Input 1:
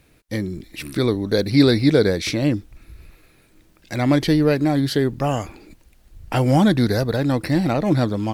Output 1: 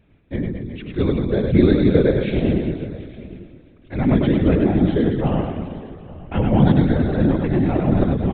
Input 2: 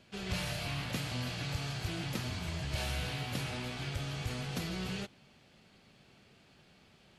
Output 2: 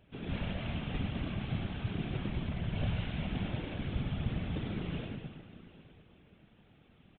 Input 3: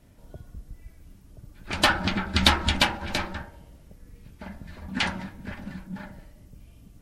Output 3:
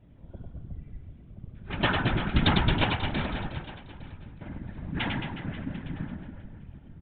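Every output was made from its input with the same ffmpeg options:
ffmpeg -i in.wav -filter_complex "[0:a]asplit=2[link_01][link_02];[link_02]aecho=0:1:860:0.1[link_03];[link_01][link_03]amix=inputs=2:normalize=0,aresample=8000,aresample=44100,asplit=2[link_04][link_05];[link_05]aecho=0:1:100|220|364|536.8|744.2:0.631|0.398|0.251|0.158|0.1[link_06];[link_04][link_06]amix=inputs=2:normalize=0,afftfilt=real='hypot(re,im)*cos(2*PI*random(0))':imag='hypot(re,im)*sin(2*PI*random(1))':win_size=512:overlap=0.75,lowshelf=frequency=440:gain=9,volume=-1dB" out.wav

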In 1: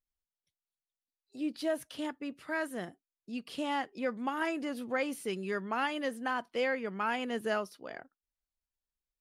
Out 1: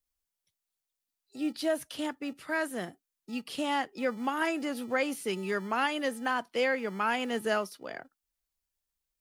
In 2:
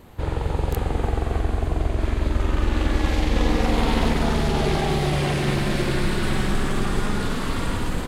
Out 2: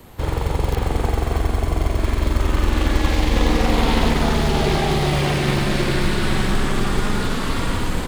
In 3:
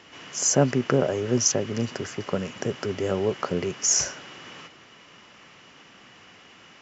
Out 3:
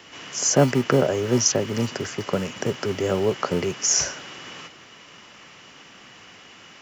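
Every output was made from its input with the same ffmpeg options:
ffmpeg -i in.wav -filter_complex "[0:a]acrossover=split=6100[link_01][link_02];[link_02]acompressor=threshold=-48dB:ratio=4:attack=1:release=60[link_03];[link_01][link_03]amix=inputs=2:normalize=0,highshelf=frequency=5000:gain=6,acrossover=split=180|870|2100[link_04][link_05][link_06][link_07];[link_04]acrusher=samples=41:mix=1:aa=0.000001[link_08];[link_08][link_05][link_06][link_07]amix=inputs=4:normalize=0,volume=3dB" out.wav

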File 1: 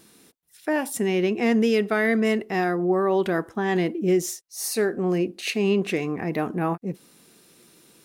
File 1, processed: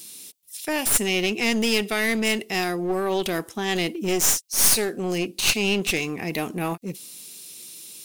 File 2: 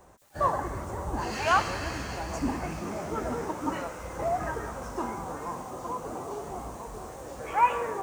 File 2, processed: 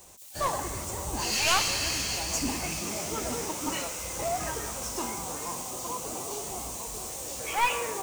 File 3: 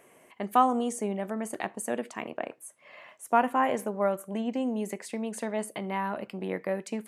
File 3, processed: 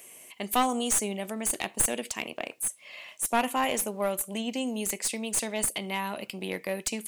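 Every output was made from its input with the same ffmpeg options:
ffmpeg -i in.wav -af "aexciter=amount=5:drive=5.9:freq=2300,aeval=exprs='clip(val(0),-1,0.0668)':channel_layout=same,volume=-2dB" out.wav

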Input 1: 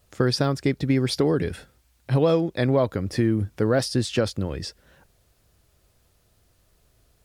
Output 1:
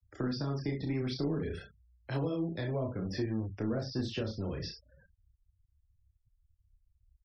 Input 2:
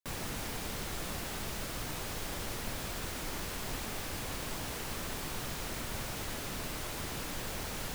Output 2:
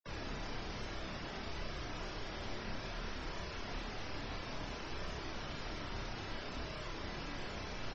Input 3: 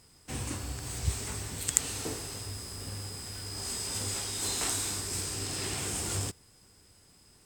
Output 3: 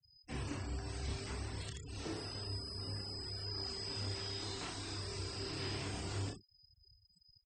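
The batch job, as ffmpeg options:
ffmpeg -i in.wav -filter_complex "[0:a]aecho=1:1:28|64:0.501|0.335,acrossover=split=230[link_01][link_02];[link_02]acompressor=threshold=-32dB:ratio=6[link_03];[link_01][link_03]amix=inputs=2:normalize=0,flanger=delay=1.7:depth=8.7:regen=-51:speed=0.59:shape=sinusoidal,asplit=2[link_04][link_05];[link_05]adelay=31,volume=-6dB[link_06];[link_04][link_06]amix=inputs=2:normalize=0,acrossover=split=230|1700|4500[link_07][link_08][link_09][link_10];[link_07]volume=35.5dB,asoftclip=hard,volume=-35.5dB[link_11];[link_11][link_08][link_09][link_10]amix=inputs=4:normalize=0,equalizer=frequency=5300:width_type=o:width=0.45:gain=5,acrossover=split=4600[link_12][link_13];[link_13]acompressor=threshold=-53dB:ratio=4:attack=1:release=60[link_14];[link_12][link_14]amix=inputs=2:normalize=0,afftfilt=real='re*gte(hypot(re,im),0.00447)':imag='im*gte(hypot(re,im),0.00447)':win_size=1024:overlap=0.75,volume=-1.5dB" out.wav

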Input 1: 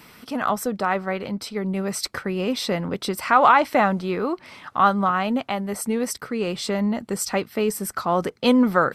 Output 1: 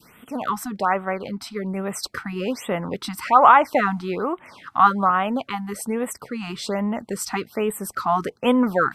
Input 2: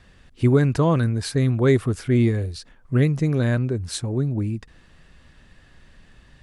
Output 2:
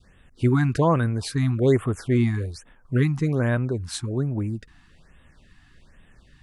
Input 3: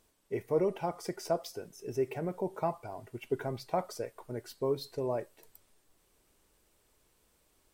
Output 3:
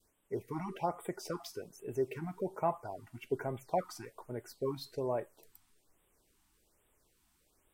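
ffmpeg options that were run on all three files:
ffmpeg -i in.wav -af "adynamicequalizer=threshold=0.0178:dfrequency=1000:dqfactor=0.8:tfrequency=1000:tqfactor=0.8:attack=5:release=100:ratio=0.375:range=3:mode=boostabove:tftype=bell,afftfilt=real='re*(1-between(b*sr/1024,450*pow(5500/450,0.5+0.5*sin(2*PI*1.2*pts/sr))/1.41,450*pow(5500/450,0.5+0.5*sin(2*PI*1.2*pts/sr))*1.41))':imag='im*(1-between(b*sr/1024,450*pow(5500/450,0.5+0.5*sin(2*PI*1.2*pts/sr))/1.41,450*pow(5500/450,0.5+0.5*sin(2*PI*1.2*pts/sr))*1.41))':win_size=1024:overlap=0.75,volume=-2.5dB" out.wav

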